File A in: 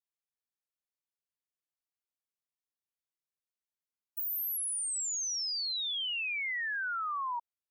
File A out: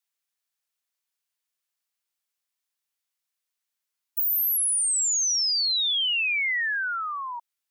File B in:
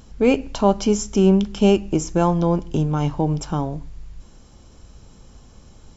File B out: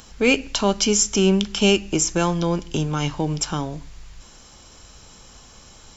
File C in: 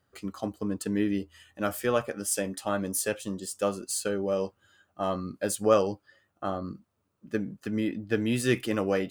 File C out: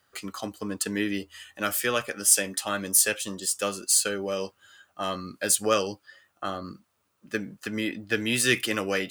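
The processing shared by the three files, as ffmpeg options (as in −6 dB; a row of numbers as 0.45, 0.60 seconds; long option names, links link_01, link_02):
-filter_complex "[0:a]tiltshelf=frequency=630:gain=-7.5,acrossover=split=520|1300[link_01][link_02][link_03];[link_02]acompressor=threshold=-43dB:ratio=6[link_04];[link_01][link_04][link_03]amix=inputs=3:normalize=0,volume=3dB"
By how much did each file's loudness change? +10.0, −0.5, +4.0 LU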